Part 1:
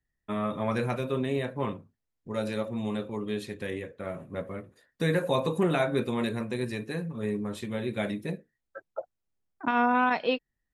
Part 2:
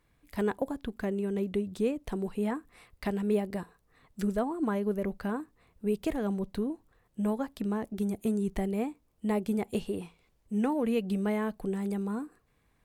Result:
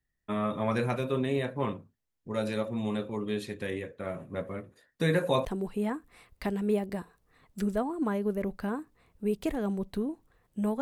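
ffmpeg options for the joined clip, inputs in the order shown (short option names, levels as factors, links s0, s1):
-filter_complex "[0:a]apad=whole_dur=10.81,atrim=end=10.81,atrim=end=5.452[s0];[1:a]atrim=start=2.058:end=7.42[s1];[s0][s1]acrossfade=d=0.004:c1=hsin:c2=hsin"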